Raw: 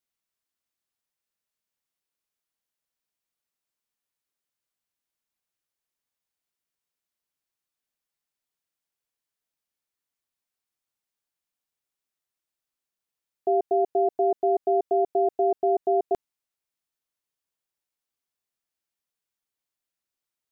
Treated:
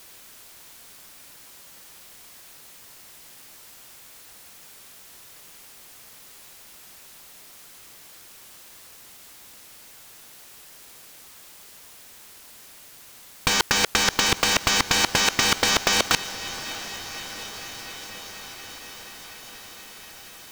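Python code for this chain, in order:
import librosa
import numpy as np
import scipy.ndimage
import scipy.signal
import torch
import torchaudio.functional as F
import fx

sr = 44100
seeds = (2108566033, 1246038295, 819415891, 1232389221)

y = fx.fold_sine(x, sr, drive_db=19, ceiling_db=-14.5)
y = fx.over_compress(y, sr, threshold_db=-25.0, ratio=-0.5)
y = fx.echo_diffused(y, sr, ms=686, feedback_pct=75, wet_db=-15.5)
y = y * np.sign(np.sin(2.0 * np.pi * 350.0 * np.arange(len(y)) / sr))
y = F.gain(torch.from_numpy(y), 8.0).numpy()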